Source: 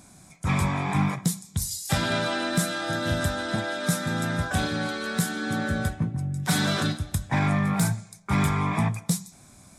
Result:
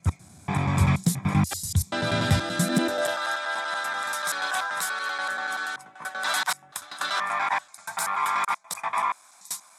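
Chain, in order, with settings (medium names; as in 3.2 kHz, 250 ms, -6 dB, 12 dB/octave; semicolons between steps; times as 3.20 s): slices played last to first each 96 ms, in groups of 5; high-pass sweep 82 Hz -> 1 kHz, 2.47–3.19 s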